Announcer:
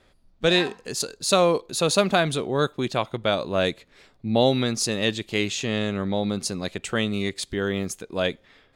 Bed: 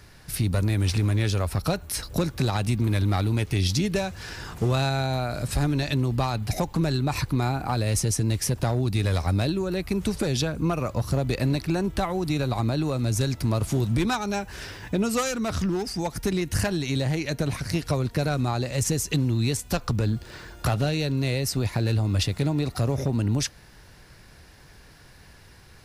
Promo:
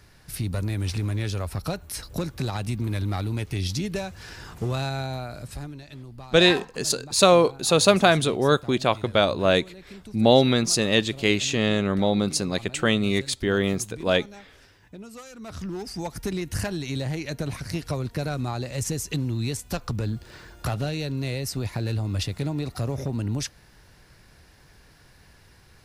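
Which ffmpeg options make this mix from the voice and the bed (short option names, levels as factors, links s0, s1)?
-filter_complex "[0:a]adelay=5900,volume=1.41[s0];[1:a]volume=3.16,afade=t=out:st=5:d=0.81:silence=0.211349,afade=t=in:st=15.29:d=0.7:silence=0.199526[s1];[s0][s1]amix=inputs=2:normalize=0"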